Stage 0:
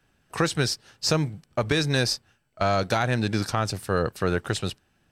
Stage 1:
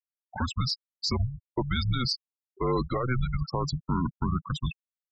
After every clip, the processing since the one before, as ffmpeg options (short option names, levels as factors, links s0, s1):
-af "afreqshift=-250,alimiter=limit=0.141:level=0:latency=1:release=77,afftfilt=real='re*gte(hypot(re,im),0.0631)':imag='im*gte(hypot(re,im),0.0631)':win_size=1024:overlap=0.75"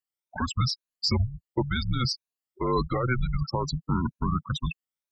-af "afftfilt=real='re*pow(10,11/40*sin(2*PI*(1.5*log(max(b,1)*sr/1024/100)/log(2)-(2.1)*(pts-256)/sr)))':imag='im*pow(10,11/40*sin(2*PI*(1.5*log(max(b,1)*sr/1024/100)/log(2)-(2.1)*(pts-256)/sr)))':win_size=1024:overlap=0.75"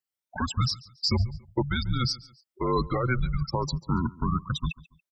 -af "aecho=1:1:141|282:0.0841|0.0286"